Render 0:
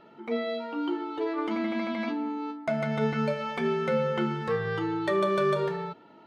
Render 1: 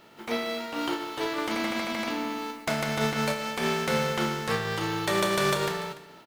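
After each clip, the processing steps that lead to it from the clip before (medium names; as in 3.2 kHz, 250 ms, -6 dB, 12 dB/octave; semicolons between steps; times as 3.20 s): spectral contrast reduction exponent 0.51; delay 291 ms -17 dB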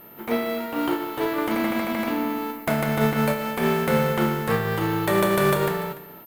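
whistle 13 kHz -55 dBFS; FFT filter 230 Hz 0 dB, 1.9 kHz -5 dB, 5.7 kHz -15 dB, 14 kHz +3 dB; trim +7.5 dB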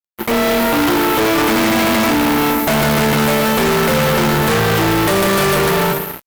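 level rider gain up to 14 dB; fuzz box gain 34 dB, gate -35 dBFS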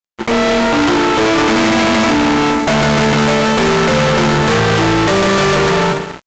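resampled via 16 kHz; trim +2 dB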